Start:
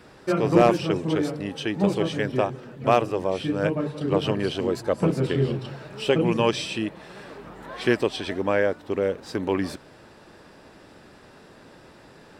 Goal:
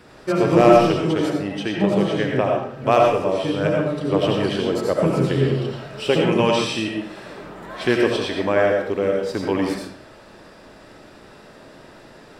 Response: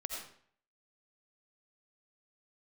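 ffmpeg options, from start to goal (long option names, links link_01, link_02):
-filter_complex "[1:a]atrim=start_sample=2205[link_01];[0:a][link_01]afir=irnorm=-1:irlink=0,asplit=3[link_02][link_03][link_04];[link_02]afade=type=out:start_time=1.32:duration=0.02[link_05];[link_03]adynamicequalizer=threshold=0.00562:dfrequency=3600:dqfactor=0.7:tfrequency=3600:tqfactor=0.7:attack=5:release=100:ratio=0.375:range=3:mode=cutabove:tftype=highshelf,afade=type=in:start_time=1.32:duration=0.02,afade=type=out:start_time=2.91:duration=0.02[link_06];[link_04]afade=type=in:start_time=2.91:duration=0.02[link_07];[link_05][link_06][link_07]amix=inputs=3:normalize=0,volume=4.5dB"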